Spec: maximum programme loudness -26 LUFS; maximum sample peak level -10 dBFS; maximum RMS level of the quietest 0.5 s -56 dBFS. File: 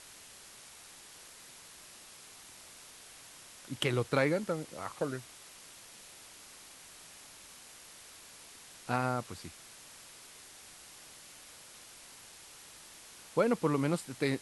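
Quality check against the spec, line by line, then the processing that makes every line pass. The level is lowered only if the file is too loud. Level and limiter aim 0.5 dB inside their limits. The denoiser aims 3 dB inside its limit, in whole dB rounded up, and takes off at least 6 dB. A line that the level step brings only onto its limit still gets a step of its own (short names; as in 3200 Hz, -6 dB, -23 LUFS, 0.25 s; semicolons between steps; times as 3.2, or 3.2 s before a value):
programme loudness -33.5 LUFS: OK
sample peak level -14.0 dBFS: OK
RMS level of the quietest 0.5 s -53 dBFS: fail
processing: denoiser 6 dB, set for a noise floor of -53 dBFS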